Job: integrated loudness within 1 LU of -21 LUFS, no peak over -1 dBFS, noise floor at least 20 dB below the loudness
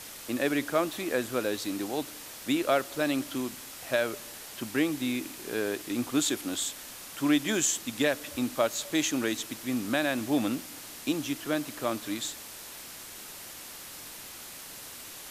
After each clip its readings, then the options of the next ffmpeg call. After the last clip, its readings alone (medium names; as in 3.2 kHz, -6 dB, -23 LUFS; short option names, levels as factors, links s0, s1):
noise floor -44 dBFS; noise floor target -50 dBFS; loudness -30.0 LUFS; peak level -11.0 dBFS; loudness target -21.0 LUFS
-> -af "afftdn=nr=6:nf=-44"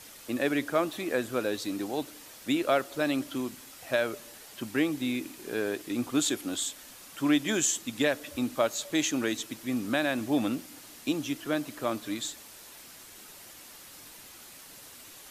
noise floor -49 dBFS; noise floor target -51 dBFS
-> -af "afftdn=nr=6:nf=-49"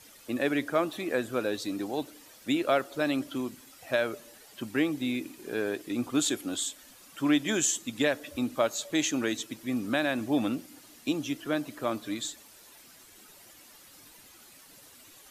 noise floor -54 dBFS; loudness -30.5 LUFS; peak level -11.5 dBFS; loudness target -21.0 LUFS
-> -af "volume=2.99"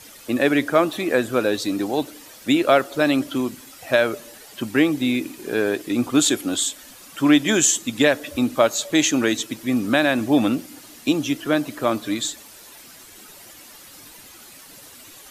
loudness -21.0 LUFS; peak level -2.0 dBFS; noise floor -45 dBFS